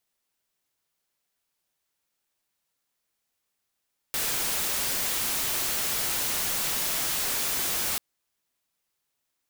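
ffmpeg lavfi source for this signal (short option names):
-f lavfi -i "anoisesrc=c=white:a=0.0689:d=3.84:r=44100:seed=1"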